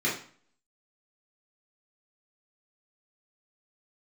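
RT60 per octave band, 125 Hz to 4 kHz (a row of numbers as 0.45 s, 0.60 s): 0.50 s, 0.50 s, 0.45 s, 0.50 s, 0.45 s, 0.40 s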